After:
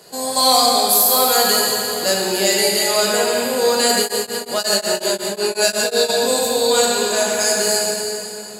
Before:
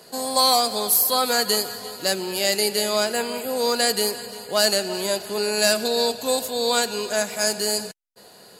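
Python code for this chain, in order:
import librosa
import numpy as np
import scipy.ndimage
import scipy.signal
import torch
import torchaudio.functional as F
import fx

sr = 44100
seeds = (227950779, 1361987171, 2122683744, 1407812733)

y = fx.peak_eq(x, sr, hz=7300.0, db=4.5, octaves=0.31)
y = fx.rev_plate(y, sr, seeds[0], rt60_s=3.0, hf_ratio=0.85, predelay_ms=0, drr_db=-3.0)
y = fx.tremolo_abs(y, sr, hz=5.5, at=(3.99, 6.08), fade=0.02)
y = y * librosa.db_to_amplitude(1.0)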